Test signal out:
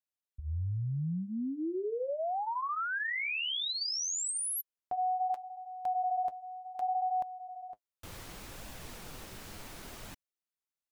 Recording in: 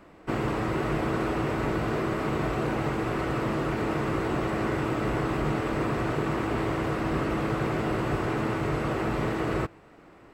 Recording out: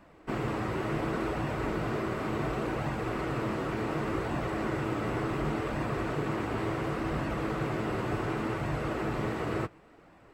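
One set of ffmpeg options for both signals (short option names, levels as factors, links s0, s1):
-af "flanger=delay=1.1:depth=9.6:regen=-43:speed=0.69:shape=sinusoidal"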